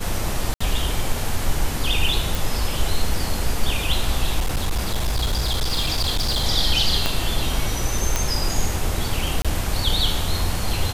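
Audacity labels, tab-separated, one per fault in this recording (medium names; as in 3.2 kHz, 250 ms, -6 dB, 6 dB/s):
0.540000	0.600000	dropout 65 ms
2.350000	2.350000	pop
4.400000	6.450000	clipped -17 dBFS
7.060000	7.060000	pop -5 dBFS
8.160000	8.160000	pop
9.420000	9.450000	dropout 26 ms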